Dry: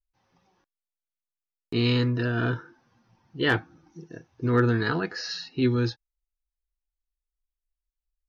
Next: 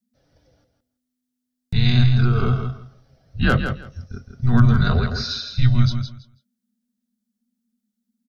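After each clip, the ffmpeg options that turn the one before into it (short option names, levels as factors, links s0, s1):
-af "afreqshift=-250,equalizer=f=400:t=o:w=0.67:g=3,equalizer=f=1000:t=o:w=0.67:g=-12,equalizer=f=2500:t=o:w=0.67:g=-8,aecho=1:1:164|328|492:0.422|0.0759|0.0137,volume=2.51"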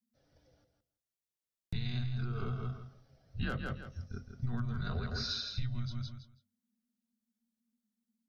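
-af "bandreject=f=50:t=h:w=6,bandreject=f=100:t=h:w=6,bandreject=f=150:t=h:w=6,bandreject=f=200:t=h:w=6,bandreject=f=250:t=h:w=6,acompressor=threshold=0.0708:ratio=16,volume=0.398"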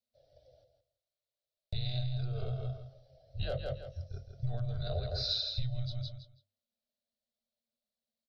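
-af "firequalizer=gain_entry='entry(130,0);entry(210,-22);entry(600,14);entry(970,-16);entry(4000,5);entry(6300,-9)':delay=0.05:min_phase=1,volume=1.19"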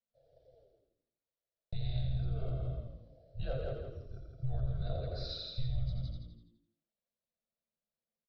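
-filter_complex "[0:a]lowpass=f=1400:p=1,aecho=1:1:5.9:0.49,asplit=7[s0][s1][s2][s3][s4][s5][s6];[s1]adelay=85,afreqshift=-58,volume=0.596[s7];[s2]adelay=170,afreqshift=-116,volume=0.269[s8];[s3]adelay=255,afreqshift=-174,volume=0.12[s9];[s4]adelay=340,afreqshift=-232,volume=0.0543[s10];[s5]adelay=425,afreqshift=-290,volume=0.0245[s11];[s6]adelay=510,afreqshift=-348,volume=0.011[s12];[s0][s7][s8][s9][s10][s11][s12]amix=inputs=7:normalize=0,volume=0.75"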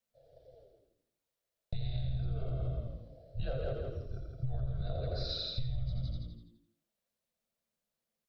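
-af "acompressor=threshold=0.0158:ratio=6,volume=1.88"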